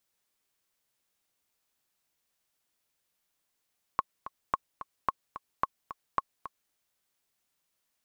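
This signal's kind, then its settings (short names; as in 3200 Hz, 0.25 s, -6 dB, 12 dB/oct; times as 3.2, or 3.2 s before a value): metronome 219 bpm, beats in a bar 2, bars 5, 1090 Hz, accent 13.5 dB -12 dBFS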